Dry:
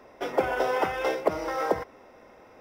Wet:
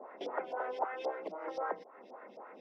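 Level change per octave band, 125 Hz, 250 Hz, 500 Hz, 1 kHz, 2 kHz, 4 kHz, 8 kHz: below −20 dB, −14.5 dB, −11.5 dB, −9.0 dB, −13.0 dB, −13.5 dB, below −20 dB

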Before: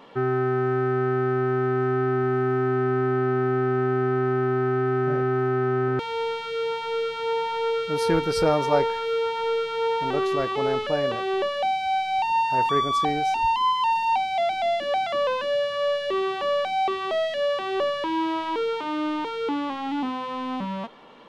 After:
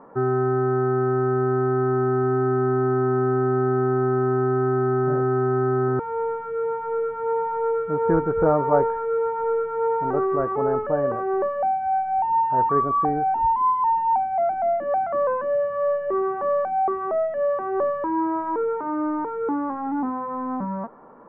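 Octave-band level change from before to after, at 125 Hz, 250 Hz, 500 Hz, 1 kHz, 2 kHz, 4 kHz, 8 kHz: +2.0 dB, +2.0 dB, +2.0 dB, +2.0 dB, −5.5 dB, below −35 dB, below −30 dB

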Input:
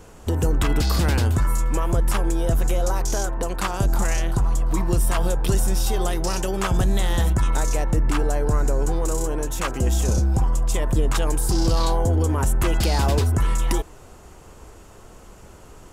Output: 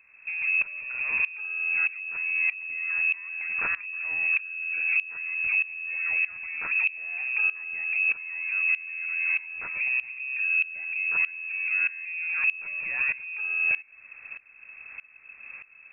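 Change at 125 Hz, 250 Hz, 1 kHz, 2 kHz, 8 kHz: below −40 dB, below −30 dB, −18.5 dB, +11.0 dB, below −40 dB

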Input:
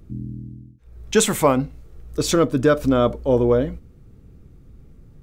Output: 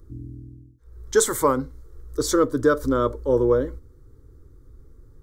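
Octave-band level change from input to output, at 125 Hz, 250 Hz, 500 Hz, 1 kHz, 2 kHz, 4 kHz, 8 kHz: −6.5, −4.0, −2.0, −1.5, −2.5, −6.5, −1.0 decibels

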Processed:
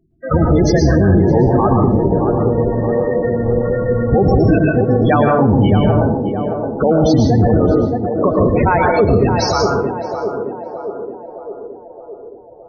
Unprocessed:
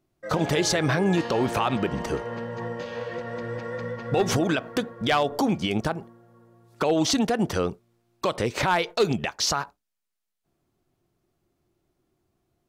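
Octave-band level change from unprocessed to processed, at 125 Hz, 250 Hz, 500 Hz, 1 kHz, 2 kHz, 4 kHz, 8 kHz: +16.5 dB, +13.0 dB, +13.0 dB, +10.0 dB, +5.0 dB, −0.5 dB, can't be measured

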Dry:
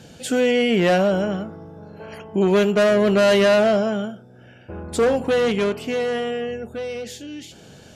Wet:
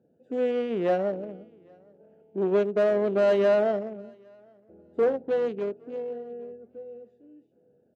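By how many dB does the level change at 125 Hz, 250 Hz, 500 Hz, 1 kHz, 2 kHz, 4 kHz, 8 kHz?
below −10 dB, −11.0 dB, −6.0 dB, −9.5 dB, −14.0 dB, below −15 dB, below −25 dB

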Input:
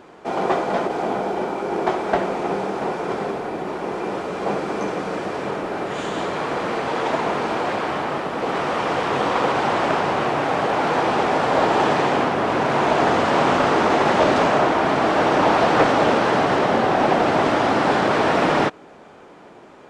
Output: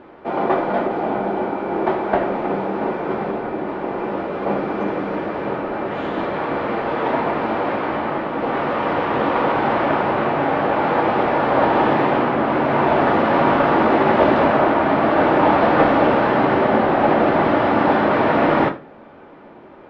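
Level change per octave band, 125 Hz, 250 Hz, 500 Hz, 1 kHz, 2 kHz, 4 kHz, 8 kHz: +2.0 dB, +3.5 dB, +2.0 dB, +1.5 dB, +0.5 dB, −5.0 dB, below −20 dB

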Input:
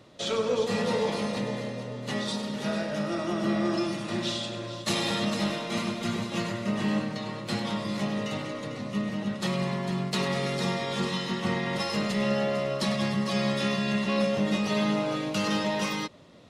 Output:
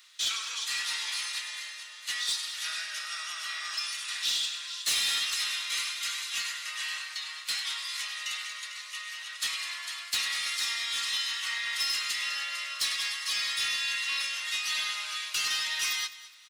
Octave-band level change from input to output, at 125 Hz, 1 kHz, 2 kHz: below −35 dB, −9.0 dB, +2.5 dB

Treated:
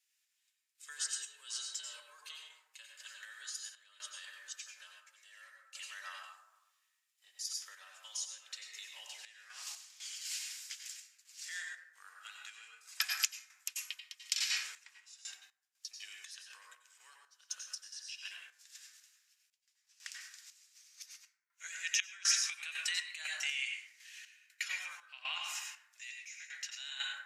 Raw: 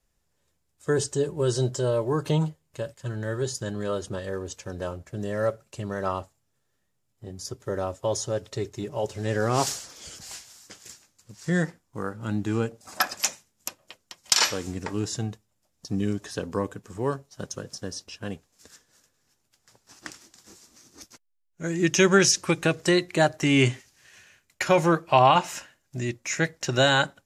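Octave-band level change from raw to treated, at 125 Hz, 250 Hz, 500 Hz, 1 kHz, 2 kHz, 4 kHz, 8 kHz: below −40 dB, below −40 dB, below −40 dB, −27.0 dB, −11.0 dB, −8.0 dB, −7.5 dB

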